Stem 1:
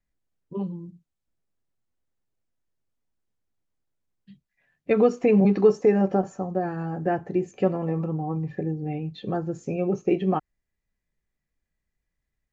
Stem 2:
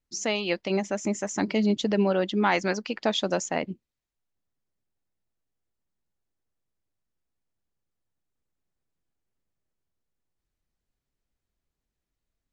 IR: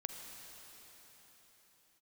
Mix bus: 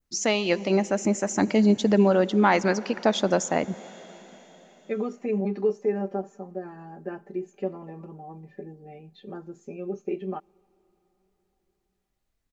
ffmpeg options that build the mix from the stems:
-filter_complex "[0:a]lowshelf=frequency=190:width_type=q:width=1.5:gain=-8,aecho=1:1:5:0.81,volume=-12dB,asplit=2[link_01][link_02];[link_02]volume=-24dB[link_03];[1:a]volume=2.5dB,asplit=2[link_04][link_05];[link_05]volume=-10dB[link_06];[2:a]atrim=start_sample=2205[link_07];[link_03][link_06]amix=inputs=2:normalize=0[link_08];[link_08][link_07]afir=irnorm=-1:irlink=0[link_09];[link_01][link_04][link_09]amix=inputs=3:normalize=0,adynamicequalizer=threshold=0.00708:dfrequency=3200:dqfactor=1:tfrequency=3200:tqfactor=1:attack=5:release=100:ratio=0.375:range=3.5:mode=cutabove:tftype=bell"

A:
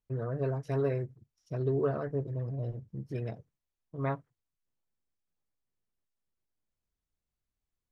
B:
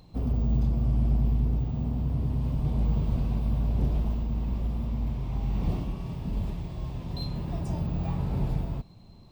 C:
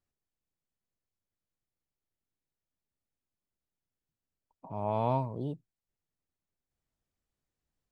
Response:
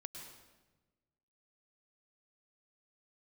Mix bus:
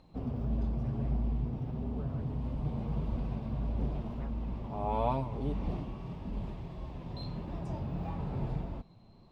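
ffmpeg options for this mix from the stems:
-filter_complex "[0:a]adelay=150,volume=-17.5dB[link_01];[1:a]aemphasis=mode=reproduction:type=75fm,flanger=delay=3.3:depth=5.7:regen=-46:speed=1.6:shape=sinusoidal,volume=1.5dB[link_02];[2:a]aecho=1:1:7:0.65,volume=-1dB[link_03];[link_01][link_02][link_03]amix=inputs=3:normalize=0,lowshelf=frequency=230:gain=-7"

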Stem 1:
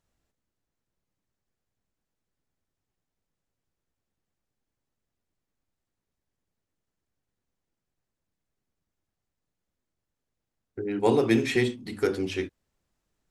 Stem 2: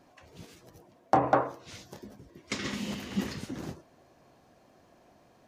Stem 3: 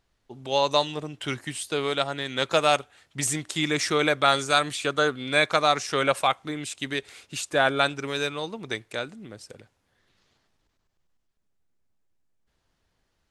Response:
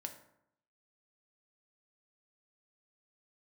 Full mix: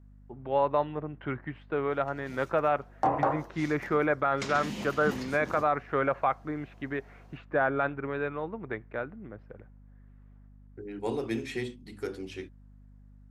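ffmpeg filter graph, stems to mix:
-filter_complex "[0:a]volume=-10dB[link_01];[1:a]equalizer=frequency=830:width_type=o:width=0.77:gain=4.5,adelay=1900,volume=-2.5dB[link_02];[2:a]lowpass=frequency=1800:width=0.5412,lowpass=frequency=1800:width=1.3066,aeval=exprs='val(0)+0.00316*(sin(2*PI*50*n/s)+sin(2*PI*2*50*n/s)/2+sin(2*PI*3*50*n/s)/3+sin(2*PI*4*50*n/s)/4+sin(2*PI*5*50*n/s)/5)':channel_layout=same,volume=-2dB[link_03];[link_01][link_02][link_03]amix=inputs=3:normalize=0,alimiter=limit=-15dB:level=0:latency=1:release=22"

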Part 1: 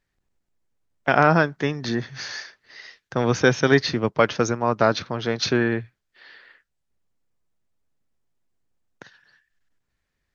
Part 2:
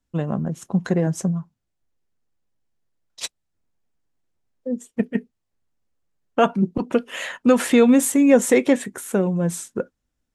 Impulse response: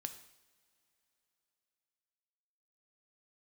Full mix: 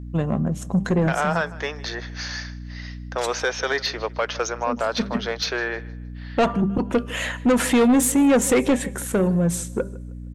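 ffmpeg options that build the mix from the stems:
-filter_complex "[0:a]highpass=frequency=470:width=0.5412,highpass=frequency=470:width=1.3066,alimiter=limit=-12dB:level=0:latency=1:release=82,volume=1.5dB,asplit=3[link_01][link_02][link_03];[link_02]volume=-21dB[link_04];[1:a]bandreject=frequency=196.8:width_type=h:width=4,bandreject=frequency=393.6:width_type=h:width=4,bandreject=frequency=590.4:width_type=h:width=4,bandreject=frequency=787.2:width_type=h:width=4,bandreject=frequency=984:width_type=h:width=4,bandreject=frequency=1180.8:width_type=h:width=4,aeval=exprs='val(0)+0.0158*(sin(2*PI*60*n/s)+sin(2*PI*2*60*n/s)/2+sin(2*PI*3*60*n/s)/3+sin(2*PI*4*60*n/s)/4+sin(2*PI*5*60*n/s)/5)':channel_layout=same,volume=1.5dB,asplit=3[link_05][link_06][link_07];[link_06]volume=-12dB[link_08];[link_07]volume=-21dB[link_09];[link_03]apad=whole_len=456187[link_10];[link_05][link_10]sidechaincompress=threshold=-29dB:ratio=8:attack=46:release=204[link_11];[2:a]atrim=start_sample=2205[link_12];[link_08][link_12]afir=irnorm=-1:irlink=0[link_13];[link_04][link_09]amix=inputs=2:normalize=0,aecho=0:1:156|312|468|624|780:1|0.32|0.102|0.0328|0.0105[link_14];[link_01][link_11][link_13][link_14]amix=inputs=4:normalize=0,asoftclip=type=tanh:threshold=-12.5dB"

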